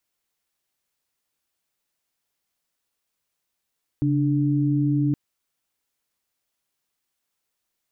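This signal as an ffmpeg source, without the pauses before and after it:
-f lavfi -i "aevalsrc='0.0891*(sin(2*PI*138.59*t)+sin(2*PI*293.66*t))':d=1.12:s=44100"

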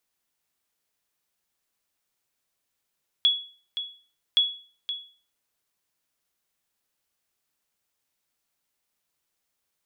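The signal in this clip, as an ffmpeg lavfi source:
-f lavfi -i "aevalsrc='0.224*(sin(2*PI*3370*mod(t,1.12))*exp(-6.91*mod(t,1.12)/0.41)+0.282*sin(2*PI*3370*max(mod(t,1.12)-0.52,0))*exp(-6.91*max(mod(t,1.12)-0.52,0)/0.41))':d=2.24:s=44100"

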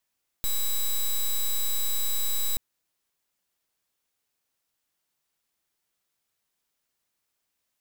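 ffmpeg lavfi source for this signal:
-f lavfi -i "aevalsrc='0.0562*(2*lt(mod(3910*t,1),0.08)-1)':d=2.13:s=44100"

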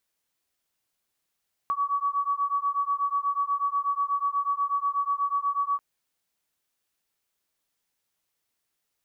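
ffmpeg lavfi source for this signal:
-f lavfi -i "aevalsrc='0.0447*(sin(2*PI*1130*t)+sin(2*PI*1138.2*t))':d=4.09:s=44100"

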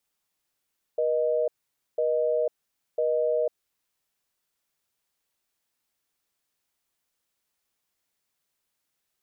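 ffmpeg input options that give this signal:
-f lavfi -i "aevalsrc='0.0596*(sin(2*PI*480*t)+sin(2*PI*620*t))*clip(min(mod(t,1),0.5-mod(t,1))/0.005,0,1)':d=2.64:s=44100"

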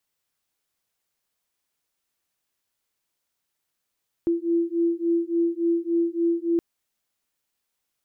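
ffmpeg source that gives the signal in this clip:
-f lavfi -i "aevalsrc='0.0668*(sin(2*PI*336*t)+sin(2*PI*339.5*t))':d=2.32:s=44100"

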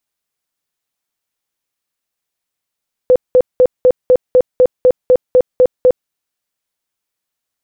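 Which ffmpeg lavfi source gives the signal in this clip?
-f lavfi -i "aevalsrc='0.596*sin(2*PI*505*mod(t,0.25))*lt(mod(t,0.25),29/505)':d=3:s=44100"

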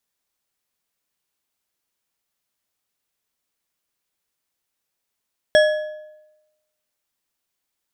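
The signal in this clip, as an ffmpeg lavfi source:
-f lavfi -i "aevalsrc='0.355*pow(10,-3*t/0.99)*sin(2*PI*613*t)+0.178*pow(10,-3*t/0.73)*sin(2*PI*1690*t)+0.0891*pow(10,-3*t/0.597)*sin(2*PI*3312.7*t)+0.0447*pow(10,-3*t/0.513)*sin(2*PI*5475.9*t)+0.0224*pow(10,-3*t/0.455)*sin(2*PI*8177.4*t)':d=1.55:s=44100"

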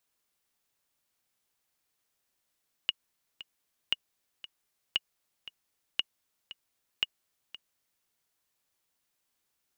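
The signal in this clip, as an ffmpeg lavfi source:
-f lavfi -i "aevalsrc='pow(10,(-13-16.5*gte(mod(t,2*60/116),60/116))/20)*sin(2*PI*2880*mod(t,60/116))*exp(-6.91*mod(t,60/116)/0.03)':d=5.17:s=44100"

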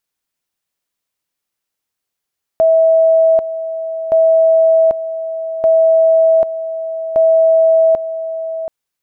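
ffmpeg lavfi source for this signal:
-f lavfi -i "aevalsrc='pow(10,(-7-12*gte(mod(t,1.52),0.79))/20)*sin(2*PI*650*t)':d=6.08:s=44100"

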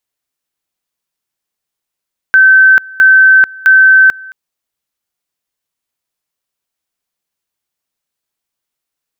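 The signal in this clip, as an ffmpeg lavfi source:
-f lavfi -i "aevalsrc='pow(10,(-2-24.5*gte(mod(t,0.66),0.44))/20)*sin(2*PI*1540*t)':d=1.98:s=44100"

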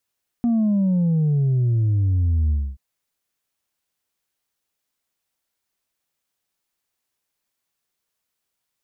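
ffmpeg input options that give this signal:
-f lavfi -i "aevalsrc='0.15*clip((2.33-t)/0.26,0,1)*tanh(1.26*sin(2*PI*240*2.33/log(65/240)*(exp(log(65/240)*t/2.33)-1)))/tanh(1.26)':d=2.33:s=44100"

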